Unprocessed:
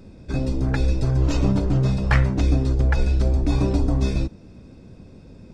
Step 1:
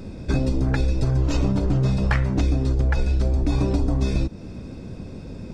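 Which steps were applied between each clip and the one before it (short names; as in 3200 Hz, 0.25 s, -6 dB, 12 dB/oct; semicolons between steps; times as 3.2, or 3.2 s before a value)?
compressor 6:1, threshold -26 dBFS, peak gain reduction 13 dB; gain +8.5 dB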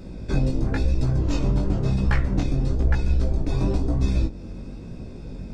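octaver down 2 oct, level +1 dB; chorus 0.99 Hz, delay 16 ms, depth 6.5 ms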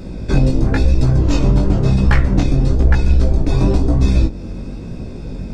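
overloaded stage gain 12 dB; gain +8.5 dB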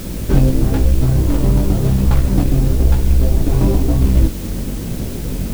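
median filter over 25 samples; vocal rider within 5 dB 0.5 s; requantised 6-bit, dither triangular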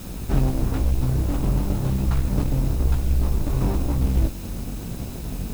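minimum comb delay 0.78 ms; gain -7.5 dB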